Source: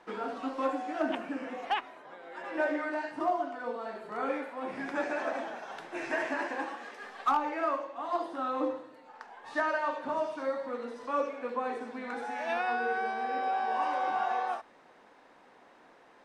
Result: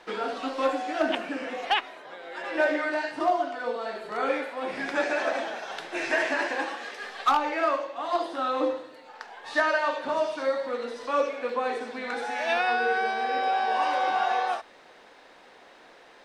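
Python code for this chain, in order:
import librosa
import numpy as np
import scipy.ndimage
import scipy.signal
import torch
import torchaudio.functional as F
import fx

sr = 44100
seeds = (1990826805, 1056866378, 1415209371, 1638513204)

y = fx.graphic_eq(x, sr, hz=(125, 250, 1000, 4000), db=(-6, -6, -5, 5))
y = y * 10.0 ** (8.5 / 20.0)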